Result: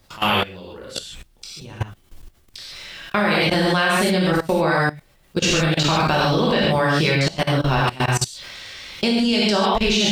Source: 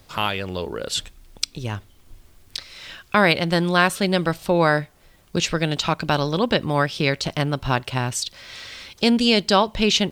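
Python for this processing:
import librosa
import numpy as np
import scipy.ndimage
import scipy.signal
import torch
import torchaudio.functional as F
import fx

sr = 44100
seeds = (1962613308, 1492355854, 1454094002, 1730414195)

y = fx.rev_gated(x, sr, seeds[0], gate_ms=170, shape='flat', drr_db=-6.0)
y = fx.level_steps(y, sr, step_db=19)
y = F.gain(torch.from_numpy(y), 1.0).numpy()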